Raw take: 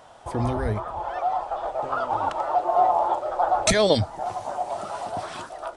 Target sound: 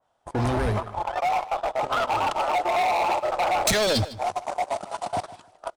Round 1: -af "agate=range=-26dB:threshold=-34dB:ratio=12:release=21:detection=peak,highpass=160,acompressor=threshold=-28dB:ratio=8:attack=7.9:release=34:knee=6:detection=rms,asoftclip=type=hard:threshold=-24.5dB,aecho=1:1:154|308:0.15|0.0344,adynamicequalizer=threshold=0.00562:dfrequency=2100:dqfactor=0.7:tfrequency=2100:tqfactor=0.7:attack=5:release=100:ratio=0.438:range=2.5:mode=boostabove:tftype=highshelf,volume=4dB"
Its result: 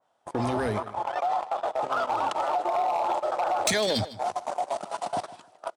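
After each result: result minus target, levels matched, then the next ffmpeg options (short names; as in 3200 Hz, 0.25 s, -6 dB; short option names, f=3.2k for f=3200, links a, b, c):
compressor: peak gain reduction +8 dB; 125 Hz band -4.5 dB
-af "agate=range=-26dB:threshold=-34dB:ratio=12:release=21:detection=peak,highpass=160,acompressor=threshold=-18.5dB:ratio=8:attack=7.9:release=34:knee=6:detection=rms,asoftclip=type=hard:threshold=-24.5dB,aecho=1:1:154|308:0.15|0.0344,adynamicequalizer=threshold=0.00562:dfrequency=2100:dqfactor=0.7:tfrequency=2100:tqfactor=0.7:attack=5:release=100:ratio=0.438:range=2.5:mode=boostabove:tftype=highshelf,volume=4dB"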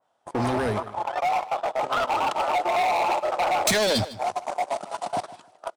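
125 Hz band -4.5 dB
-af "agate=range=-26dB:threshold=-34dB:ratio=12:release=21:detection=peak,acompressor=threshold=-18.5dB:ratio=8:attack=7.9:release=34:knee=6:detection=rms,asoftclip=type=hard:threshold=-24.5dB,aecho=1:1:154|308:0.15|0.0344,adynamicequalizer=threshold=0.00562:dfrequency=2100:dqfactor=0.7:tfrequency=2100:tqfactor=0.7:attack=5:release=100:ratio=0.438:range=2.5:mode=boostabove:tftype=highshelf,volume=4dB"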